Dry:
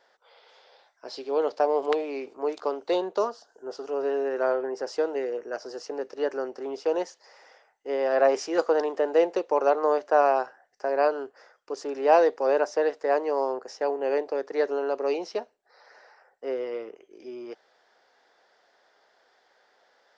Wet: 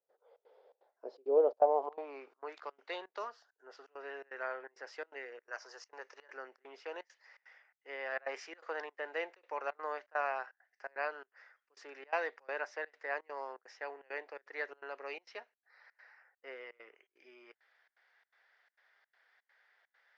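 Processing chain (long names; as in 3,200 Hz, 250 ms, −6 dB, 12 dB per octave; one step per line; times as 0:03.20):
band-pass filter sweep 450 Hz → 2,000 Hz, 0:01.27–0:02.64
gate pattern ".xxx.xxx.xxxx" 167 BPM −24 dB
0:05.43–0:06.30: graphic EQ with 15 bands 100 Hz −3 dB, 250 Hz −7 dB, 1,000 Hz +7 dB, 6,300 Hz +11 dB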